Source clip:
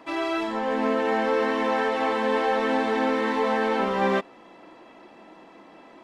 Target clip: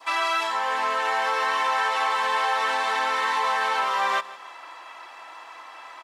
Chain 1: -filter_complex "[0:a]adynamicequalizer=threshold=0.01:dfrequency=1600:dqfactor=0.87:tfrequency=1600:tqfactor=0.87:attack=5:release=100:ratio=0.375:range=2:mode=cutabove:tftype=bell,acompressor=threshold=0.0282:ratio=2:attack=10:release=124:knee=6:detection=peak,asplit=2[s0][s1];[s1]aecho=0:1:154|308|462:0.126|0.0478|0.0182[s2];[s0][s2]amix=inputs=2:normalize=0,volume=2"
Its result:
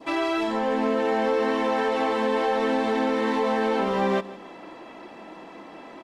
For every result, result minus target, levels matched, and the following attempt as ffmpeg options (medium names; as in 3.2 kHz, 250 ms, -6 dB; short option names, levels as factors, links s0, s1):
8 kHz band -8.0 dB; 1 kHz band -3.5 dB
-filter_complex "[0:a]adynamicequalizer=threshold=0.01:dfrequency=1600:dqfactor=0.87:tfrequency=1600:tqfactor=0.87:attack=5:release=100:ratio=0.375:range=2:mode=cutabove:tftype=bell,acompressor=threshold=0.0282:ratio=2:attack=10:release=124:knee=6:detection=peak,highshelf=f=3900:g=9.5,asplit=2[s0][s1];[s1]aecho=0:1:154|308|462:0.126|0.0478|0.0182[s2];[s0][s2]amix=inputs=2:normalize=0,volume=2"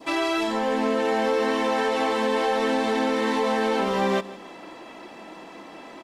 1 kHz band -3.5 dB
-filter_complex "[0:a]adynamicequalizer=threshold=0.01:dfrequency=1600:dqfactor=0.87:tfrequency=1600:tqfactor=0.87:attack=5:release=100:ratio=0.375:range=2:mode=cutabove:tftype=bell,highpass=f=1100:t=q:w=2,acompressor=threshold=0.0282:ratio=2:attack=10:release=124:knee=6:detection=peak,highshelf=f=3900:g=9.5,asplit=2[s0][s1];[s1]aecho=0:1:154|308|462:0.126|0.0478|0.0182[s2];[s0][s2]amix=inputs=2:normalize=0,volume=2"